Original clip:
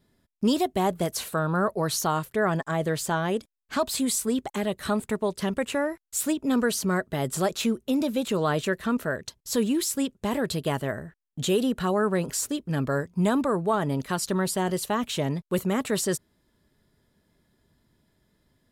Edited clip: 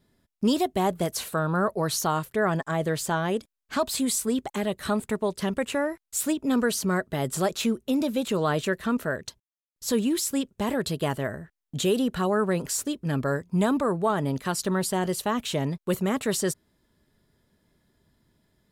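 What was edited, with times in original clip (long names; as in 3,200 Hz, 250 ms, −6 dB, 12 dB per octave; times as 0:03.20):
0:09.40: splice in silence 0.36 s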